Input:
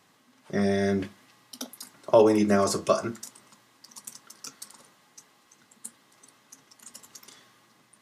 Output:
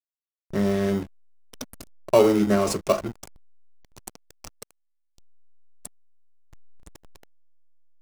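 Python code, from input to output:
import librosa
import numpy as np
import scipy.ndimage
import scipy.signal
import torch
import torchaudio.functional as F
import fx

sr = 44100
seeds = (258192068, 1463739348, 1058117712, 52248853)

p1 = fx.high_shelf(x, sr, hz=11000.0, db=11.5)
p2 = fx.sample_hold(p1, sr, seeds[0], rate_hz=1700.0, jitter_pct=0)
p3 = p1 + (p2 * librosa.db_to_amplitude(-9.5))
y = fx.backlash(p3, sr, play_db=-25.5)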